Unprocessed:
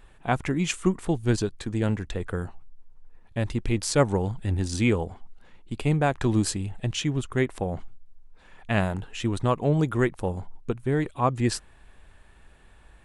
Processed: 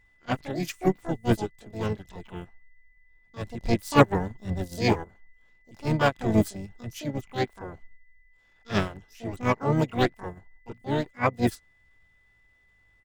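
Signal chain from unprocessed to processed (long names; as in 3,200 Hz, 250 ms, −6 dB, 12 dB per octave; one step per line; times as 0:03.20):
pitch-shifted copies added −4 semitones −8 dB, +7 semitones −12 dB, +12 semitones −2 dB
transient designer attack −5 dB, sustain −1 dB
steady tone 2,000 Hz −45 dBFS
expander for the loud parts 2.5 to 1, over −30 dBFS
level +4.5 dB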